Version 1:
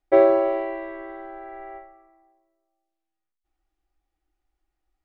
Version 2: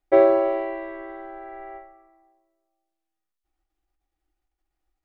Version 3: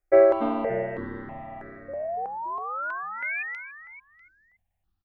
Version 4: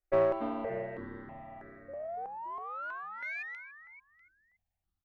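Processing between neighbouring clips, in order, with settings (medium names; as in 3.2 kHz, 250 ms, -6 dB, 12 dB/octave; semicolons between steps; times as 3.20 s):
endings held to a fixed fall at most 100 dB/s
painted sound rise, 1.88–3.43 s, 540–2500 Hz -30 dBFS; frequency-shifting echo 285 ms, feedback 32%, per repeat -100 Hz, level -4 dB; stepped phaser 3.1 Hz 920–3000 Hz
single-diode clipper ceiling -16 dBFS; trim -8 dB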